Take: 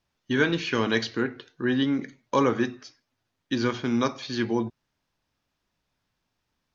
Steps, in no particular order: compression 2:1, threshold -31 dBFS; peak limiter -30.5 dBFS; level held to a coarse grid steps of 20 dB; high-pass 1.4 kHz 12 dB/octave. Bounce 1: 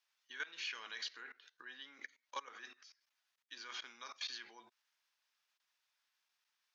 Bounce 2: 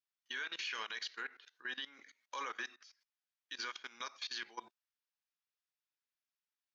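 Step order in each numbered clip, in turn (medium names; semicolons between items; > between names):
level held to a coarse grid > compression > high-pass > peak limiter; high-pass > compression > level held to a coarse grid > peak limiter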